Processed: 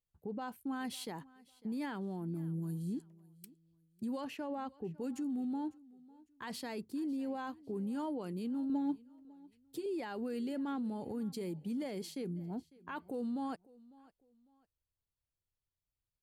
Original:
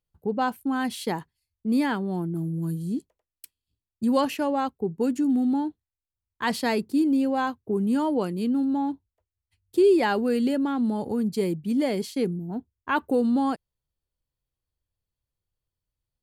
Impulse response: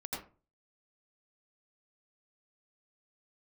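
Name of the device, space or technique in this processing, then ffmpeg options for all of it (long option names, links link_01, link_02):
stacked limiters: -filter_complex "[0:a]alimiter=limit=-17.5dB:level=0:latency=1:release=373,alimiter=level_in=0.5dB:limit=-24dB:level=0:latency=1:release=47,volume=-0.5dB,asettb=1/sr,asplit=3[link_01][link_02][link_03];[link_01]atrim=end=4.244[link_04];[link_02]atrim=start=4.24:end=4.94,asetpts=PTS-STARTPTS,afade=type=in:duration=0.004:curve=qsin,afade=type=out:start_time=0.696:duration=0.004:curve=qsin,aemphasis=mode=reproduction:type=cd[link_05];[link_03]atrim=start=4.936[link_06];[link_04][link_05]acrossfade=duration=0.004:curve1=hsin:curve2=qsin[link_07];[link_07][link_06]acrossfade=duration=0.004:curve1=qsin:curve2=hsin,asettb=1/sr,asplit=3[link_08][link_09][link_10];[link_08]atrim=end=8.694[link_11];[link_09]atrim=start=8.69:end=9.86,asetpts=PTS-STARTPTS,afade=type=in:duration=0.004:curve=qsin,afade=type=out:start_time=1.166:duration=0.004:curve=qsin,aecho=1:1:6.7:0.89,atrim=end_sample=51597[link_12];[link_10]atrim=start=9.856[link_13];[link_11][link_12]acrossfade=duration=0.004:curve1=hsin:curve2=qsin[link_14];[link_14][link_13]acrossfade=duration=0.004:curve1=qsin:curve2=hsin,aecho=1:1:551|1102:0.075|0.0225,volume=-8dB"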